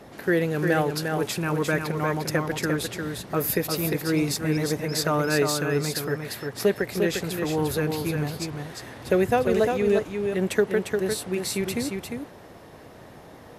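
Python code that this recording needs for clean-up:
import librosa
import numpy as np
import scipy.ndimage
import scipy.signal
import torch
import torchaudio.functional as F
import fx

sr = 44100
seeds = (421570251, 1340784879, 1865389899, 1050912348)

y = fx.fix_interpolate(x, sr, at_s=(8.33,), length_ms=1.8)
y = fx.noise_reduce(y, sr, print_start_s=12.48, print_end_s=12.98, reduce_db=26.0)
y = fx.fix_echo_inverse(y, sr, delay_ms=351, level_db=-5.0)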